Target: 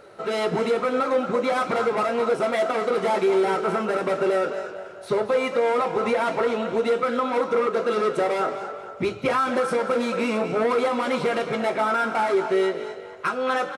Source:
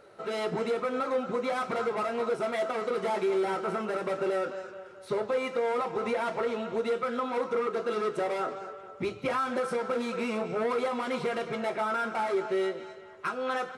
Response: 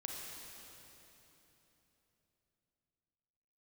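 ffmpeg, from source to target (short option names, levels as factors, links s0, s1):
-filter_complex "[0:a]asplit=4[s0][s1][s2][s3];[s1]adelay=224,afreqshift=49,volume=0.2[s4];[s2]adelay=448,afreqshift=98,volume=0.0676[s5];[s3]adelay=672,afreqshift=147,volume=0.0232[s6];[s0][s4][s5][s6]amix=inputs=4:normalize=0,volume=2.24"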